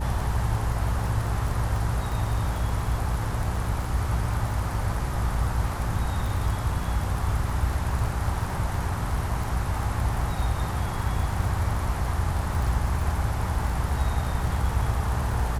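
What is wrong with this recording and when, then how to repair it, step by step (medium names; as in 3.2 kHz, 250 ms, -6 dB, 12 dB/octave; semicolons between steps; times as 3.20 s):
crackle 29 per s -29 dBFS
hum 60 Hz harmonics 7 -30 dBFS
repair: de-click; de-hum 60 Hz, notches 7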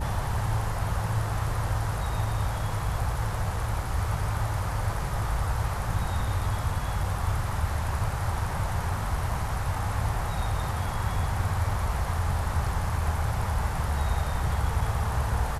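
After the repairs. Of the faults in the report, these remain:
nothing left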